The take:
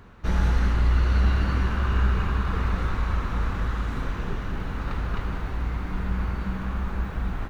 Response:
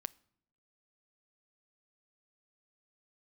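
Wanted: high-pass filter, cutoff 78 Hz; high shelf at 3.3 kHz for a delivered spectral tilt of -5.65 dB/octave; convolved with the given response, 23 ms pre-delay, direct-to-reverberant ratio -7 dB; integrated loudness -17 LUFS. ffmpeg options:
-filter_complex "[0:a]highpass=78,highshelf=f=3300:g=-3.5,asplit=2[s0][s1];[1:a]atrim=start_sample=2205,adelay=23[s2];[s1][s2]afir=irnorm=-1:irlink=0,volume=2.99[s3];[s0][s3]amix=inputs=2:normalize=0,volume=2.37"

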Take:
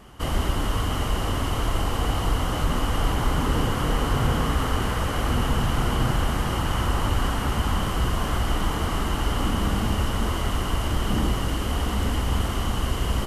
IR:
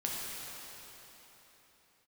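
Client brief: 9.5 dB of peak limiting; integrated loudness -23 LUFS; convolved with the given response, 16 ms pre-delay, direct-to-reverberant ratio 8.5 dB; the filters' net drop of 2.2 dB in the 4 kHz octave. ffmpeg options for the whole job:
-filter_complex "[0:a]equalizer=f=4000:t=o:g=-3.5,alimiter=limit=0.106:level=0:latency=1,asplit=2[s0][s1];[1:a]atrim=start_sample=2205,adelay=16[s2];[s1][s2]afir=irnorm=-1:irlink=0,volume=0.211[s3];[s0][s3]amix=inputs=2:normalize=0,volume=2"

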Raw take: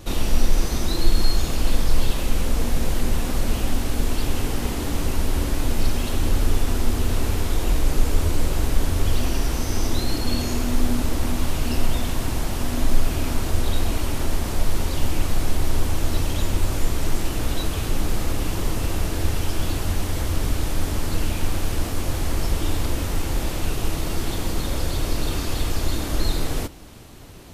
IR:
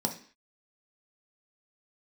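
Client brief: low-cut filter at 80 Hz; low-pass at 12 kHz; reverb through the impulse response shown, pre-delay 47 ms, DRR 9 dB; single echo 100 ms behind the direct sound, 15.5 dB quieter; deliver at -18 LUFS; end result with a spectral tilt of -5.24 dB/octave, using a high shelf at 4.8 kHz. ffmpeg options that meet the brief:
-filter_complex "[0:a]highpass=80,lowpass=12000,highshelf=f=4800:g=-5.5,aecho=1:1:100:0.168,asplit=2[s0][s1];[1:a]atrim=start_sample=2205,adelay=47[s2];[s1][s2]afir=irnorm=-1:irlink=0,volume=0.178[s3];[s0][s3]amix=inputs=2:normalize=0,volume=2.99"

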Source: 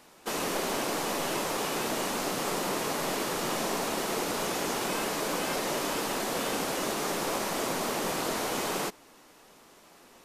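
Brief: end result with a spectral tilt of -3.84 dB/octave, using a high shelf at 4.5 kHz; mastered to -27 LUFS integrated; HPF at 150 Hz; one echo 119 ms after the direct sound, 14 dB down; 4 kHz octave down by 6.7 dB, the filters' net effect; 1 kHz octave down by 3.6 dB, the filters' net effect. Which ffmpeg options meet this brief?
-af "highpass=150,equalizer=f=1000:t=o:g=-4,equalizer=f=4000:t=o:g=-5.5,highshelf=f=4500:g=-6,aecho=1:1:119:0.2,volume=2"

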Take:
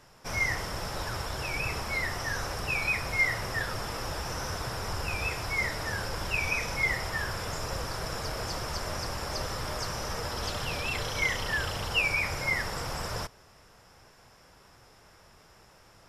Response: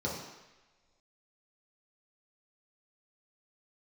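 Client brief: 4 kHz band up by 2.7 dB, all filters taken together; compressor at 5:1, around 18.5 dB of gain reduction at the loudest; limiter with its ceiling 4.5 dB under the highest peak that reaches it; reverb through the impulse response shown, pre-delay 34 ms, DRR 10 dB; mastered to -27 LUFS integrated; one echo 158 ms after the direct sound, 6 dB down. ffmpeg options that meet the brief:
-filter_complex "[0:a]equalizer=f=4000:t=o:g=4,acompressor=threshold=0.00631:ratio=5,alimiter=level_in=4.22:limit=0.0631:level=0:latency=1,volume=0.237,aecho=1:1:158:0.501,asplit=2[s0][s1];[1:a]atrim=start_sample=2205,adelay=34[s2];[s1][s2]afir=irnorm=-1:irlink=0,volume=0.158[s3];[s0][s3]amix=inputs=2:normalize=0,volume=7.5"

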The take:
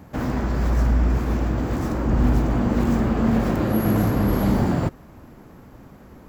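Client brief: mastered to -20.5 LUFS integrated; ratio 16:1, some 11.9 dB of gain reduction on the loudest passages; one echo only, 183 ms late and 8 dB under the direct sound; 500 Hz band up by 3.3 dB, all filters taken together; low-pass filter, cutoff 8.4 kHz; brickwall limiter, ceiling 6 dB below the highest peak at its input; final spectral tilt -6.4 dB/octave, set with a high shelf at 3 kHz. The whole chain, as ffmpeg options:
-af "lowpass=8400,equalizer=f=500:t=o:g=4,highshelf=f=3000:g=7,acompressor=threshold=0.0501:ratio=16,alimiter=limit=0.0708:level=0:latency=1,aecho=1:1:183:0.398,volume=3.98"

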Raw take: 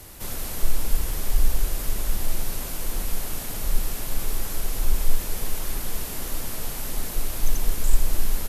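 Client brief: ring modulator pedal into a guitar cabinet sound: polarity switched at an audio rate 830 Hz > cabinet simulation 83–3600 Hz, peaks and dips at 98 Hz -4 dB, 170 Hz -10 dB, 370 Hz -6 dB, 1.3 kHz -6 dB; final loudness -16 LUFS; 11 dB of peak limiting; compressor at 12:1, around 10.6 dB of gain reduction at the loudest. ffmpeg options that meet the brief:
-af "acompressor=threshold=0.112:ratio=12,alimiter=level_in=1.12:limit=0.0631:level=0:latency=1,volume=0.891,aeval=exprs='val(0)*sgn(sin(2*PI*830*n/s))':c=same,highpass=83,equalizer=f=98:t=q:w=4:g=-4,equalizer=f=170:t=q:w=4:g=-10,equalizer=f=370:t=q:w=4:g=-6,equalizer=f=1300:t=q:w=4:g=-6,lowpass=f=3600:w=0.5412,lowpass=f=3600:w=1.3066,volume=5.96"

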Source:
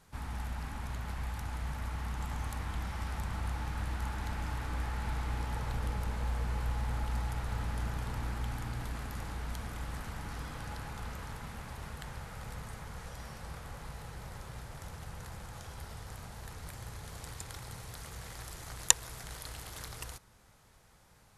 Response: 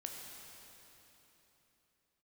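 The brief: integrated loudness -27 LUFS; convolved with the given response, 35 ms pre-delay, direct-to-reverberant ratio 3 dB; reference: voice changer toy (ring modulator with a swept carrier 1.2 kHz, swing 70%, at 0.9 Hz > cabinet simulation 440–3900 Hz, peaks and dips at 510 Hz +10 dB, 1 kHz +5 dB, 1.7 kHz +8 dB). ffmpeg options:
-filter_complex "[0:a]asplit=2[s0][s1];[1:a]atrim=start_sample=2205,adelay=35[s2];[s1][s2]afir=irnorm=-1:irlink=0,volume=0.891[s3];[s0][s3]amix=inputs=2:normalize=0,aeval=exprs='val(0)*sin(2*PI*1200*n/s+1200*0.7/0.9*sin(2*PI*0.9*n/s))':c=same,highpass=440,equalizer=f=510:t=q:w=4:g=10,equalizer=f=1000:t=q:w=4:g=5,equalizer=f=1700:t=q:w=4:g=8,lowpass=f=3900:w=0.5412,lowpass=f=3900:w=1.3066,volume=1.88"

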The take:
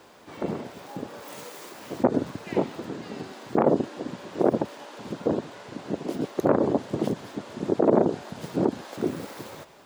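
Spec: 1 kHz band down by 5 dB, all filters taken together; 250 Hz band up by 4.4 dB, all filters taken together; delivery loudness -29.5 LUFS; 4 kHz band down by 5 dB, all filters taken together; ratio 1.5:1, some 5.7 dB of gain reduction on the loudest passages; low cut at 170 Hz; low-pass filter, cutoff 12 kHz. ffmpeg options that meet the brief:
-af "highpass=170,lowpass=12000,equalizer=f=250:t=o:g=7,equalizer=f=1000:t=o:g=-7.5,equalizer=f=4000:t=o:g=-6,acompressor=threshold=0.0355:ratio=1.5,volume=1.06"

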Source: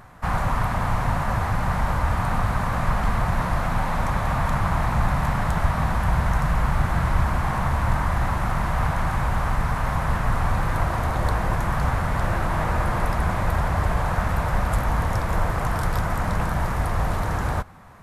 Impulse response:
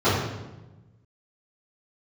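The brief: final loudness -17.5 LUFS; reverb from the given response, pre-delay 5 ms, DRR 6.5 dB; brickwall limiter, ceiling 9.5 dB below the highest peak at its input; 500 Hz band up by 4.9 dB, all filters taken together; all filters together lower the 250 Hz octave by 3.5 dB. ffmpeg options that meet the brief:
-filter_complex "[0:a]equalizer=f=250:t=o:g=-8,equalizer=f=500:t=o:g=8,alimiter=limit=0.133:level=0:latency=1,asplit=2[s0][s1];[1:a]atrim=start_sample=2205,adelay=5[s2];[s1][s2]afir=irnorm=-1:irlink=0,volume=0.0473[s3];[s0][s3]amix=inputs=2:normalize=0,volume=2.37"

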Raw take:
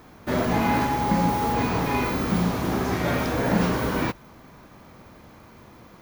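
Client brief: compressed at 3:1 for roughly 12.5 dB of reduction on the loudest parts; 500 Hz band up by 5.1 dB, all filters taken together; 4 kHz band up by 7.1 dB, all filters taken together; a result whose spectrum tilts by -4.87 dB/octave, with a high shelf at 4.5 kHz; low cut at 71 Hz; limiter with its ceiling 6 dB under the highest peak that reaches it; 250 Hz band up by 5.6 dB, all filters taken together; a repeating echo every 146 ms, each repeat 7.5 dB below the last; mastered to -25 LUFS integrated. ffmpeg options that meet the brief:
-af "highpass=71,equalizer=f=250:t=o:g=6,equalizer=f=500:t=o:g=4.5,equalizer=f=4000:t=o:g=5.5,highshelf=f=4500:g=6.5,acompressor=threshold=0.0282:ratio=3,alimiter=level_in=1.06:limit=0.0631:level=0:latency=1,volume=0.944,aecho=1:1:146|292|438|584|730:0.422|0.177|0.0744|0.0312|0.0131,volume=2.82"

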